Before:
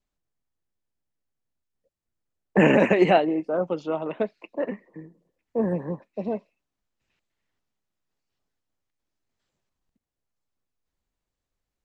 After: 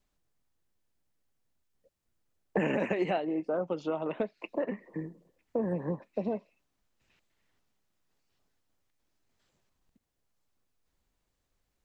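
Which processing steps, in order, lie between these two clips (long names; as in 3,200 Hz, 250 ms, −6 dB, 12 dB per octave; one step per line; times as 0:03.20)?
downward compressor 4 to 1, threshold −35 dBFS, peak gain reduction 18 dB
level +5 dB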